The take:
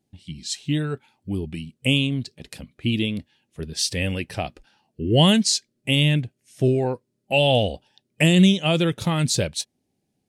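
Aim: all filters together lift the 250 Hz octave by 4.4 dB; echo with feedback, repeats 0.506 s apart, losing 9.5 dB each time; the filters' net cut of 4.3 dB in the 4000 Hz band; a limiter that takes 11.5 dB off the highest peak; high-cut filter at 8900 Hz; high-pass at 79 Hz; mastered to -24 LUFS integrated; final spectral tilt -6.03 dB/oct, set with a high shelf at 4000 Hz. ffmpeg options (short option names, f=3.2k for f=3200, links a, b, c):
-af "highpass=79,lowpass=8.9k,equalizer=f=250:t=o:g=6.5,highshelf=f=4k:g=-3.5,equalizer=f=4k:t=o:g=-4,alimiter=limit=-13.5dB:level=0:latency=1,aecho=1:1:506|1012|1518|2024:0.335|0.111|0.0365|0.012,volume=1.5dB"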